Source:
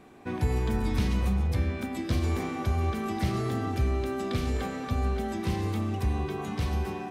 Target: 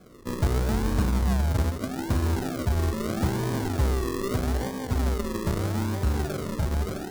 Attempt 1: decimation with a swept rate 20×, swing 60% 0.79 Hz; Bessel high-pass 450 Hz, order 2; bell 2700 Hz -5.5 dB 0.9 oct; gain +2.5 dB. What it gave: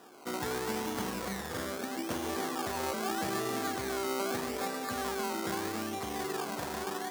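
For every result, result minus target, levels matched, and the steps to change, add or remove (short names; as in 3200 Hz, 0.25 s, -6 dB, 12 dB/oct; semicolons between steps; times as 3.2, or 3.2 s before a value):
500 Hz band +3.5 dB; decimation with a swept rate: distortion -5 dB
remove: Bessel high-pass 450 Hz, order 2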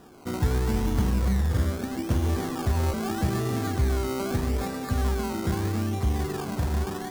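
decimation with a swept rate: distortion -5 dB
change: decimation with a swept rate 46×, swing 60% 0.79 Hz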